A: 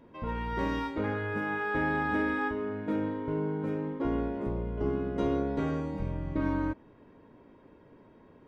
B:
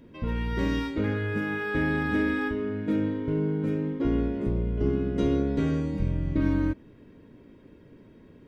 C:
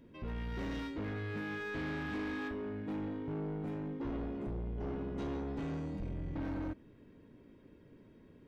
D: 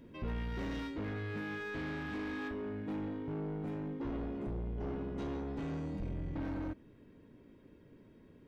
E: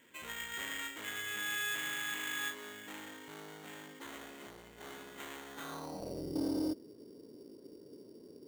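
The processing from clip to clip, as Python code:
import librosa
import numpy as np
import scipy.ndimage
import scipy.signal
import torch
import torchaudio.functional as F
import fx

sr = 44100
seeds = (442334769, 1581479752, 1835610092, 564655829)

y1 = fx.peak_eq(x, sr, hz=890.0, db=-13.5, octaves=1.6)
y1 = F.gain(torch.from_numpy(y1), 7.5).numpy()
y2 = 10.0 ** (-28.0 / 20.0) * np.tanh(y1 / 10.0 ** (-28.0 / 20.0))
y2 = F.gain(torch.from_numpy(y2), -7.0).numpy()
y3 = fx.rider(y2, sr, range_db=10, speed_s=0.5)
y4 = fx.filter_sweep_bandpass(y3, sr, from_hz=2000.0, to_hz=400.0, start_s=5.47, end_s=6.27, q=2.5)
y4 = fx.sample_hold(y4, sr, seeds[0], rate_hz=5100.0, jitter_pct=0)
y4 = F.gain(torch.from_numpy(y4), 11.0).numpy()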